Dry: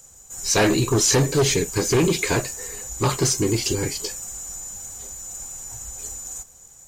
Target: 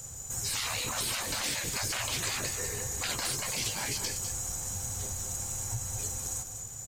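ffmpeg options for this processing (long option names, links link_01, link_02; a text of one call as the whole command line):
ffmpeg -i in.wav -af "afftfilt=real='re*lt(hypot(re,im),0.112)':imag='im*lt(hypot(re,im),0.112)':win_size=1024:overlap=0.75,equalizer=frequency=110:width=1.7:gain=13,acompressor=threshold=-38dB:ratio=2.5,aecho=1:1:200:0.376,volume=4.5dB" out.wav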